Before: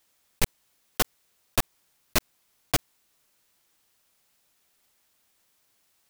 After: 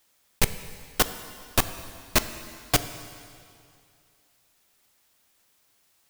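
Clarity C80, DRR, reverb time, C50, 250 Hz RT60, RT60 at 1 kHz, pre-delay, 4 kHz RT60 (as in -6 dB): 12.5 dB, 10.5 dB, 2.4 s, 11.5 dB, 2.4 s, 2.4 s, 4 ms, 2.2 s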